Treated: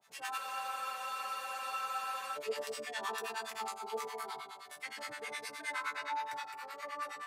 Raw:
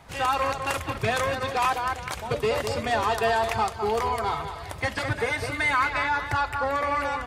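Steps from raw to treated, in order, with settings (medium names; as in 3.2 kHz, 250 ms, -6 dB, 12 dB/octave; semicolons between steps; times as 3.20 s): high-pass 230 Hz 12 dB/octave; tilt EQ +2.5 dB/octave; chord resonator D3 sus4, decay 0.61 s; harmonic tremolo 9.6 Hz, depth 100%, crossover 810 Hz; spectral freeze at 0.40 s, 1.96 s; trim +8 dB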